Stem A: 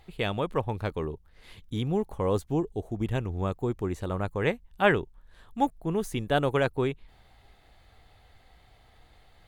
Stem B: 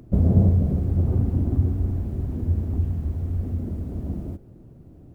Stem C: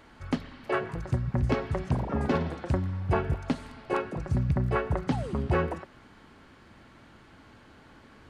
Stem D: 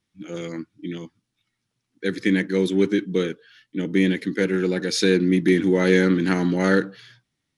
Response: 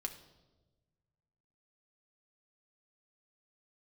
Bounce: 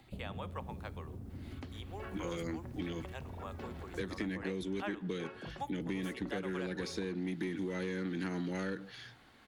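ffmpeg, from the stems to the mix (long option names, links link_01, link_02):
-filter_complex "[0:a]highpass=710,acompressor=mode=upward:threshold=-49dB:ratio=2.5,volume=-13dB,asplit=3[link_01][link_02][link_03];[link_02]volume=-5dB[link_04];[1:a]volume=-17dB[link_05];[2:a]lowpass=frequency=3000:poles=1,acompressor=threshold=-28dB:ratio=2.5,adelay=1300,volume=-11dB[link_06];[3:a]acompressor=threshold=-31dB:ratio=2.5,asoftclip=type=tanh:threshold=-20.5dB,adelay=1950,volume=-1dB[link_07];[link_03]apad=whole_len=423086[link_08];[link_06][link_08]sidechaincompress=threshold=-51dB:ratio=8:attack=12:release=291[link_09];[link_05][link_09]amix=inputs=2:normalize=0,highshelf=frequency=2100:gain=11.5,acompressor=threshold=-39dB:ratio=4,volume=0dB[link_10];[4:a]atrim=start_sample=2205[link_11];[link_04][link_11]afir=irnorm=-1:irlink=0[link_12];[link_01][link_07][link_10][link_12]amix=inputs=4:normalize=0,acrossover=split=170|1500[link_13][link_14][link_15];[link_13]acompressor=threshold=-45dB:ratio=4[link_16];[link_14]acompressor=threshold=-37dB:ratio=4[link_17];[link_15]acompressor=threshold=-46dB:ratio=4[link_18];[link_16][link_17][link_18]amix=inputs=3:normalize=0"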